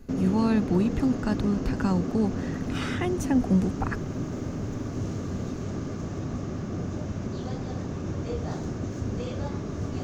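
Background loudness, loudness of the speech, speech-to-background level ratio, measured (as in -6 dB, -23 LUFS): -32.0 LUFS, -27.0 LUFS, 5.0 dB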